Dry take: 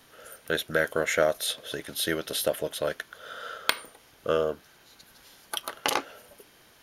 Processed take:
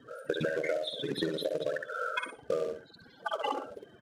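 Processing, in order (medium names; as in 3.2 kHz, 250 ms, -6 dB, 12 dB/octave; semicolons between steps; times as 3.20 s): rattle on loud lows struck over -39 dBFS, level -24 dBFS; loudest bins only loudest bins 16; tilt EQ -2 dB/octave; in parallel at -4 dB: saturation -26.5 dBFS, distortion -7 dB; on the sum: time-frequency box 5.42–5.77 s, 360–790 Hz +8 dB; short-mantissa float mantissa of 2-bit; high-pass 120 Hz 12 dB/octave; on a send: feedback delay 99 ms, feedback 21%, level -6 dB; on the sum: compression 12:1, threshold -30 dBFS, peak gain reduction 15 dB; tempo 1.7×; distance through air 59 m; trim +3 dB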